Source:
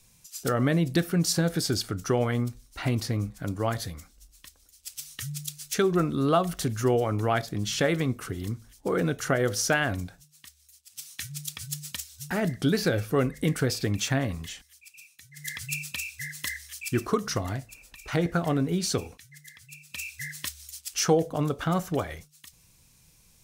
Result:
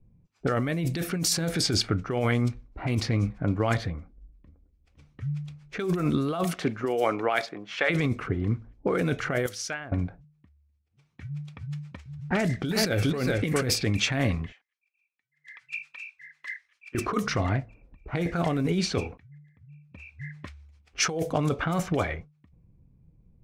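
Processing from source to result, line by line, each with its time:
3.95–4.92 echo throw 0.51 s, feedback 80%, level -14.5 dB
6.44–7.89 HPF 180 Hz -> 750 Hz
9.46–9.92 pre-emphasis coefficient 0.9
11.65–13.74 echo 0.407 s -6.5 dB
14.52–16.95 HPF 1400 Hz
18.74–19.85 high shelf 5300 Hz -4 dB
whole clip: low-pass opened by the level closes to 300 Hz, open at -21 dBFS; bell 2300 Hz +7 dB 0.33 oct; negative-ratio compressor -28 dBFS, ratio -1; gain +3 dB

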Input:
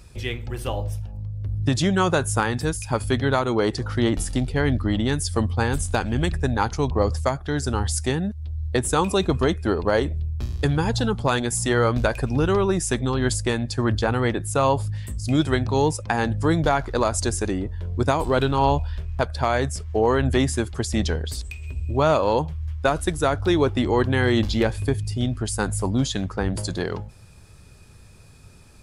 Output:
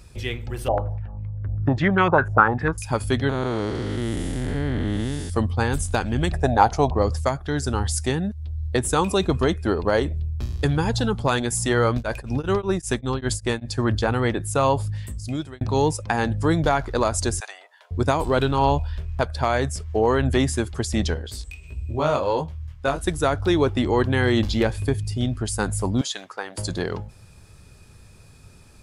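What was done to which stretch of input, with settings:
0.68–2.78 stepped low-pass 10 Hz 700–2200 Hz
3.29–5.3 time blur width 0.38 s
6.3–6.95 bell 690 Hz +15 dB 0.68 oct
11.94–13.74 beating tremolo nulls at 5.1 Hz
15.01–15.61 fade out
17.4–17.91 elliptic high-pass 680 Hz, stop band 80 dB
21.14–23.04 chorus 1.4 Hz, delay 16 ms, depth 6 ms
26.01–26.58 HPF 690 Hz

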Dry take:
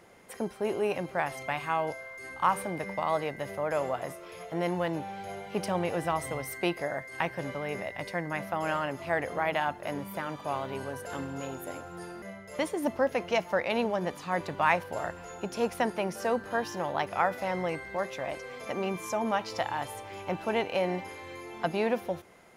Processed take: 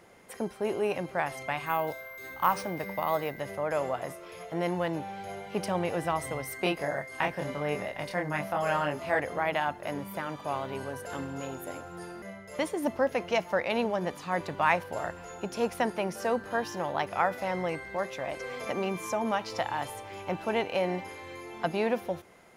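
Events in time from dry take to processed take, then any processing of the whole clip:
1.66–3.4 careless resampling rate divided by 3×, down none, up hold
6.56–9.2 doubler 27 ms -2.5 dB
18.4–19.9 three-band squash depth 40%

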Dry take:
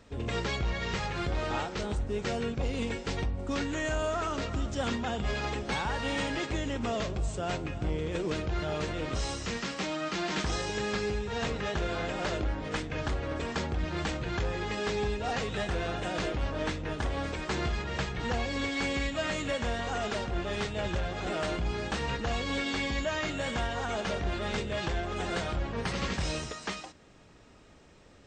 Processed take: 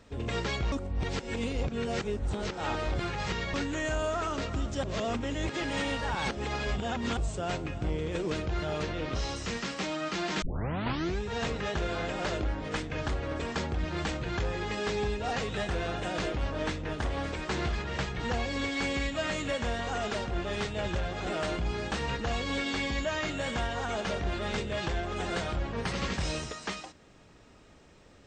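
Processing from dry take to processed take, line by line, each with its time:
0.72–3.54 reverse
4.83–7.17 reverse
8.83–9.36 LPF 6200 Hz 24 dB/oct
10.42 tape start 0.78 s
16.82–18.08 Doppler distortion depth 0.15 ms

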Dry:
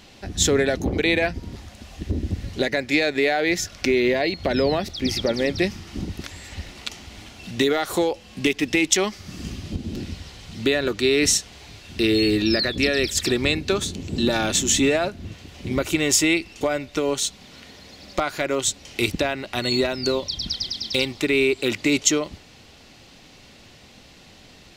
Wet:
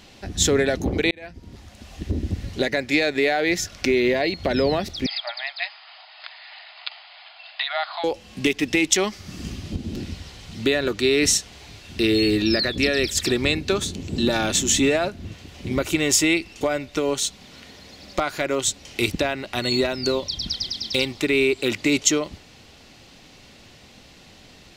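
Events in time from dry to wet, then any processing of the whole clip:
1.11–1.96 fade in
5.06–8.04 brick-wall FIR band-pass 600–5100 Hz

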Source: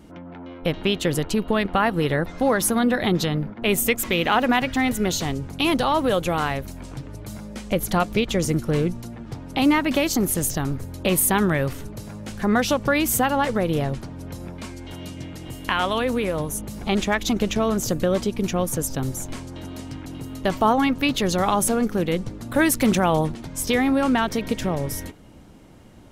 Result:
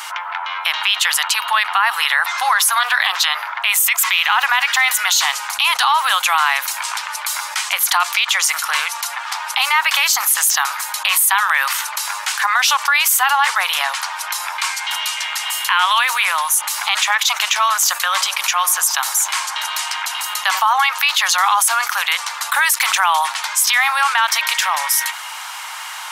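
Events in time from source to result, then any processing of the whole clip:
2.8–3.24 Doppler distortion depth 0.18 ms
18.12–20.67 dark delay 84 ms, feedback 65%, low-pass 1300 Hz, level -13.5 dB
whole clip: steep high-pass 900 Hz 48 dB/oct; maximiser +19 dB; fast leveller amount 50%; gain -5.5 dB

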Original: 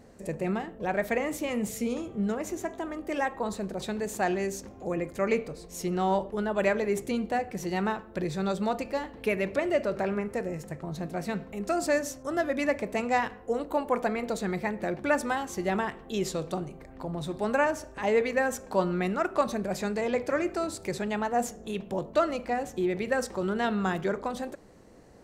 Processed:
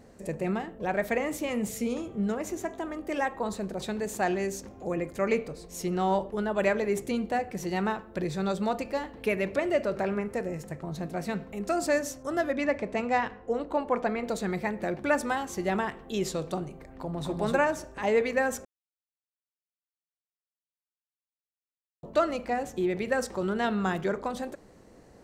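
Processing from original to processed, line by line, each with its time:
12.52–14.27 air absorption 79 m
16.91–17.36 echo throw 0.25 s, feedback 15%, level -1 dB
18.65–22.03 mute

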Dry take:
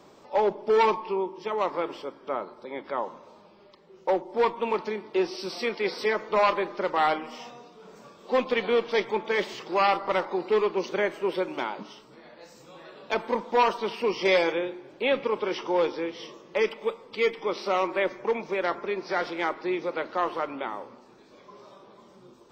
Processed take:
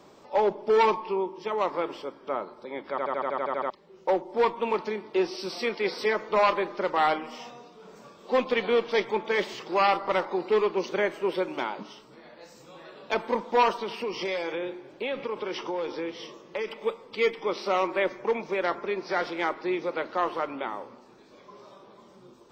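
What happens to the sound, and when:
2.9 stutter in place 0.08 s, 10 plays
13.73–16.79 compressor, threshold -27 dBFS

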